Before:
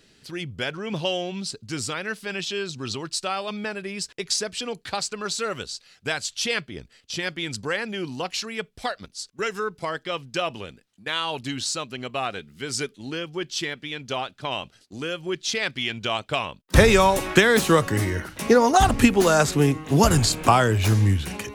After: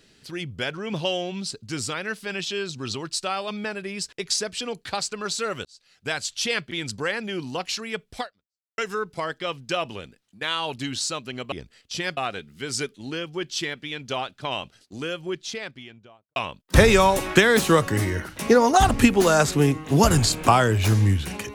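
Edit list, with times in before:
5.65–6.17 fade in
6.71–7.36 move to 12.17
8.85–9.43 fade out exponential
14.97–16.36 studio fade out

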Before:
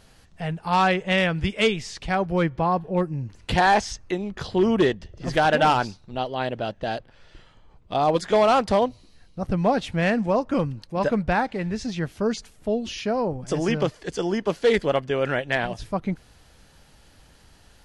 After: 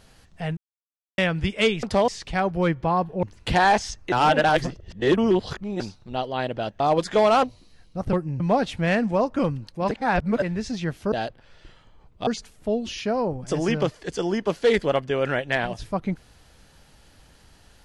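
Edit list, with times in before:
0.57–1.18 mute
2.98–3.25 move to 9.55
4.14–5.82 reverse
6.82–7.97 move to 12.27
8.6–8.85 move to 1.83
11.06–11.57 reverse

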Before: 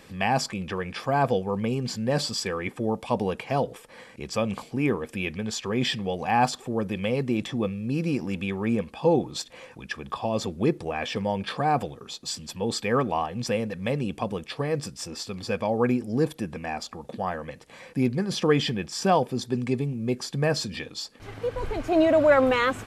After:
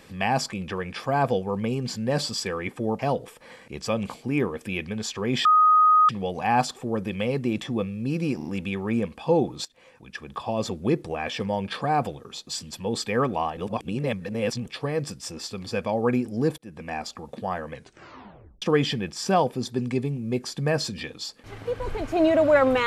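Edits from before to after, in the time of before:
2.99–3.47 cut
5.93 add tone 1250 Hz -13.5 dBFS 0.64 s
8.21 stutter 0.04 s, 3 plays
9.41–10.3 fade in, from -15.5 dB
13.33–14.42 reverse
16.34–16.67 fade in
17.49 tape stop 0.89 s

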